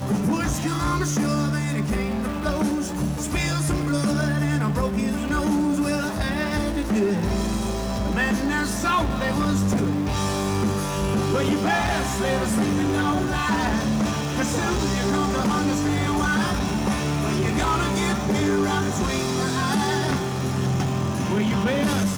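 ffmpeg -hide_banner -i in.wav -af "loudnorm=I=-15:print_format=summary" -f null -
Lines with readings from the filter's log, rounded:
Input Integrated:    -23.2 LUFS
Input True Peak:      -9.8 dBTP
Input LRA:             1.4 LU
Input Threshold:     -33.2 LUFS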